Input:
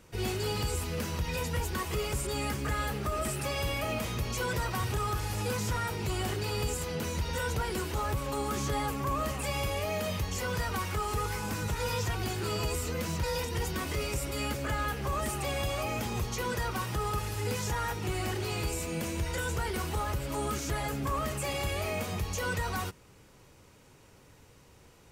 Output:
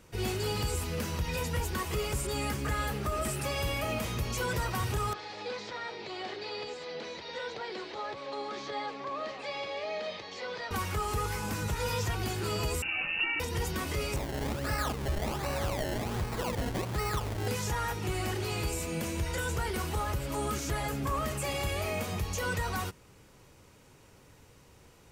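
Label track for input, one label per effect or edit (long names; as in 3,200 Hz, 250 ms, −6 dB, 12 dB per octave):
5.130000	10.710000	loudspeaker in its box 450–4,400 Hz, peaks and dips at 990 Hz −5 dB, 1,400 Hz −7 dB, 2,800 Hz −6 dB, 4,100 Hz +4 dB
12.820000	13.400000	voice inversion scrambler carrier 2,800 Hz
14.160000	17.480000	sample-and-hold swept by an LFO 25× 1.3 Hz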